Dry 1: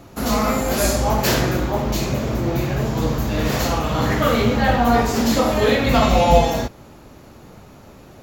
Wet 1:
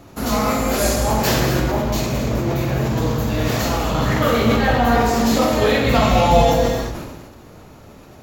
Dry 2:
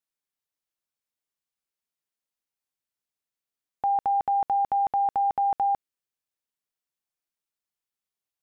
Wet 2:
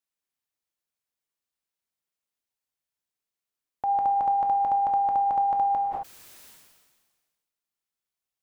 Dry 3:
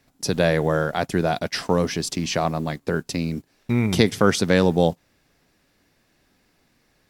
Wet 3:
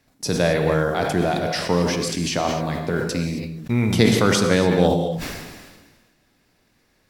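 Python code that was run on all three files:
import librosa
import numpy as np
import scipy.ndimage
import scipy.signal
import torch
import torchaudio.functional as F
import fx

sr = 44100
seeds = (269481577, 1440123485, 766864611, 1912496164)

y = fx.rev_gated(x, sr, seeds[0], gate_ms=290, shape='flat', drr_db=4.0)
y = fx.sustainer(y, sr, db_per_s=38.0)
y = y * 10.0 ** (-1.0 / 20.0)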